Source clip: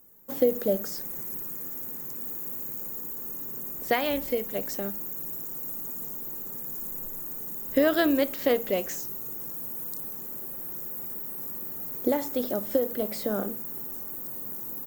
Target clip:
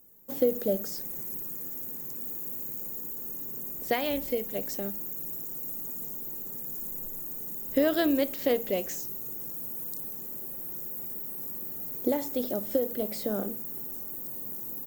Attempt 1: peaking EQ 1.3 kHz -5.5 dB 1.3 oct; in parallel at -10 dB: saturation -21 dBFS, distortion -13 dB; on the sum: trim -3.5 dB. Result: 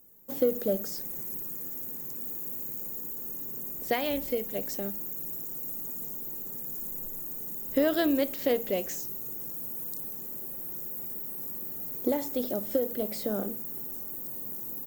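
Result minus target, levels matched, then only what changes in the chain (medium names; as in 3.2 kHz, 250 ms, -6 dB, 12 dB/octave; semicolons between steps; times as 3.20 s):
saturation: distortion +11 dB
change: saturation -13 dBFS, distortion -24 dB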